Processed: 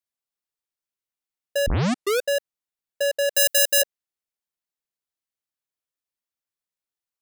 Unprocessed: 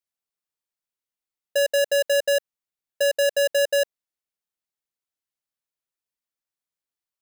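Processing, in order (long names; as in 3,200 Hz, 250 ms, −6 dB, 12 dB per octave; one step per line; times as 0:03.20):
0:01.67: tape start 0.58 s
0:03.35–0:03.82: spectral tilt +4.5 dB per octave
level −2 dB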